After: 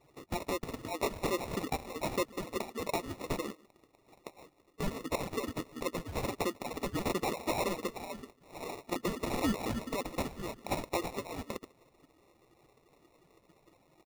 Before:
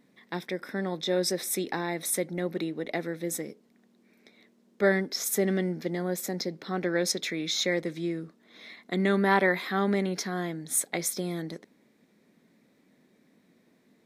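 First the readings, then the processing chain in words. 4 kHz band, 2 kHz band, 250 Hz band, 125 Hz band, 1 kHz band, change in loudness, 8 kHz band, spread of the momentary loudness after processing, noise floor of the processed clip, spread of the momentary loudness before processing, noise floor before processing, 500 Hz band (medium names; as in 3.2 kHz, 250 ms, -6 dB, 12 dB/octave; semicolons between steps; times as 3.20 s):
-8.5 dB, -10.0 dB, -7.5 dB, -7.0 dB, -3.0 dB, -7.5 dB, -12.5 dB, 10 LU, -69 dBFS, 10 LU, -65 dBFS, -7.0 dB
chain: harmonic-percussive separation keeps percussive; low-pass that closes with the level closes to 2.8 kHz, closed at -28.5 dBFS; treble shelf 3.5 kHz +9 dB; in parallel at +0.5 dB: compression, threshold -43 dBFS, peak gain reduction 17.5 dB; on the sum: saturation -23.5 dBFS, distortion -14 dB; echo from a far wall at 25 m, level -23 dB; sample-and-hold 28×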